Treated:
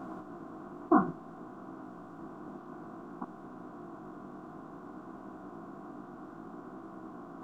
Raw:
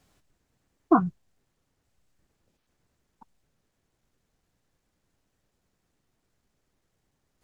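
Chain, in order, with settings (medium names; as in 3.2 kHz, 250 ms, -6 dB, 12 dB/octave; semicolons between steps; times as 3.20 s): spectral levelling over time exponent 0.4; chorus 0.58 Hz, delay 15.5 ms, depth 4.6 ms; trim -3 dB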